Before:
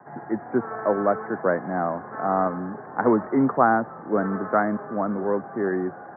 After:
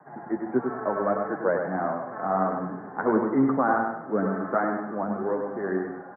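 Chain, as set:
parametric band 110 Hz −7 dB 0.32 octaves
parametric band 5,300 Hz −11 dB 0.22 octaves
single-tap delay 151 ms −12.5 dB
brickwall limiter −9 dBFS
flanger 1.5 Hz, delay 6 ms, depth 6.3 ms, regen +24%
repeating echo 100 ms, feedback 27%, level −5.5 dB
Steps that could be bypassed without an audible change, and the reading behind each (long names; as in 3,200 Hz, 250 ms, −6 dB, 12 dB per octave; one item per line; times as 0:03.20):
parametric band 5,300 Hz: nothing at its input above 1,800 Hz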